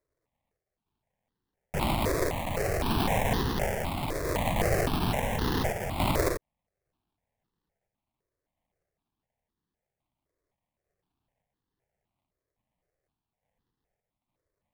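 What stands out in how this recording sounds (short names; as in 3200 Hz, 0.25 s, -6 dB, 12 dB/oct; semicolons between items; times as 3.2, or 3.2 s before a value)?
random-step tremolo; aliases and images of a low sample rate 1400 Hz, jitter 20%; notches that jump at a steady rate 3.9 Hz 810–2300 Hz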